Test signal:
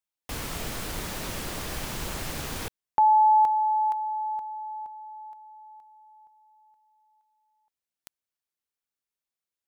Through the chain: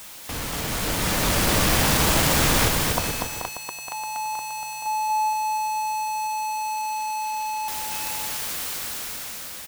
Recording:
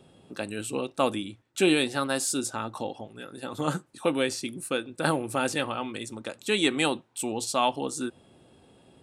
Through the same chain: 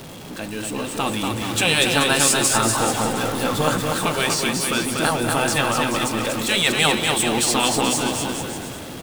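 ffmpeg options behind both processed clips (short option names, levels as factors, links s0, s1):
-af "aeval=exprs='val(0)+0.5*0.0237*sgn(val(0))':c=same,bandreject=f=380:w=12,afftfilt=real='re*lt(hypot(re,im),0.316)':imag='im*lt(hypot(re,im),0.316)':win_size=1024:overlap=0.75,dynaudnorm=f=240:g=9:m=2.99,aecho=1:1:240|432|585.6|708.5|806.8:0.631|0.398|0.251|0.158|0.1"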